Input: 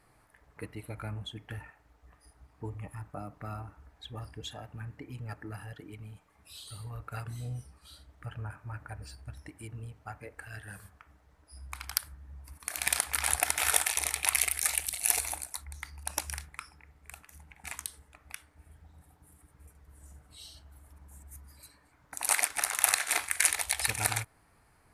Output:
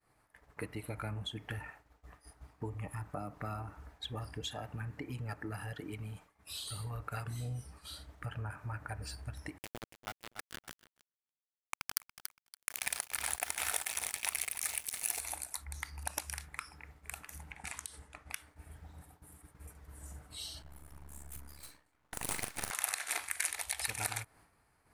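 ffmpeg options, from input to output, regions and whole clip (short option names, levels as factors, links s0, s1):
-filter_complex "[0:a]asettb=1/sr,asplit=3[s0][s1][s2];[s0]atrim=end=9.584[s3];[s1]atrim=start=9.58:end=15.21,asetpts=PTS-STARTPTS,afade=t=in:d=0.004:c=qsin,afade=t=out:st=5.626:d=0.004:c=qsin,aeval=exprs='val(0)*gte(abs(val(0)),0.0178)':c=same,aecho=1:1:284|568:0.251|0.0427,atrim=end_sample=248283[s4];[s2]atrim=start=15.206[s5];[s3][s4]acrossfade=d=0.004:c1=hsin:c2=qsin[s6];[s6][s5]acrossfade=d=0.004:c1=qsin:c2=hsin,asettb=1/sr,asplit=3[s7][s8][s9];[s7]atrim=end=17.524[s10];[s8]atrim=start=17.52:end=18.34,asetpts=PTS-STARTPTS,afade=t=in:d=0.004:c=qsin,afade=t=out:st=0.816:d=0.004:c=qsin,lowpass=f=11000:w=0.5412,lowpass=f=11000:w=1.3066,acompressor=threshold=0.00501:ratio=2:attack=3.2:release=140:knee=1:detection=peak[s11];[s9]atrim=start=18.336[s12];[s10][s11]acrossfade=d=0.004:c1=hsin:c2=qsin[s13];[s13][s12]acrossfade=d=0.004:c1=qsin:c2=hsin,asettb=1/sr,asplit=3[s14][s15][s16];[s14]atrim=end=20.624[s17];[s15]atrim=start=20.62:end=22.71,asetpts=PTS-STARTPTS,afade=t=in:d=0.004:c=qsin,afade=t=out:st=2.086:d=0.004:c=qsin,aeval=exprs='max(val(0),0)':c=same,asplit=2[s18][s19];[s19]adelay=40,volume=0.398[s20];[s18][s20]amix=inputs=2:normalize=0,atrim=end_sample=92169[s21];[s16]atrim=start=22.706[s22];[s17][s21]acrossfade=d=0.004:c1=hsin:c2=qsin[s23];[s23][s22]acrossfade=d=0.004:c1=qsin:c2=hsin,agate=range=0.0224:threshold=0.00178:ratio=3:detection=peak,lowshelf=f=150:g=-3.5,acompressor=threshold=0.00562:ratio=2.5,volume=2"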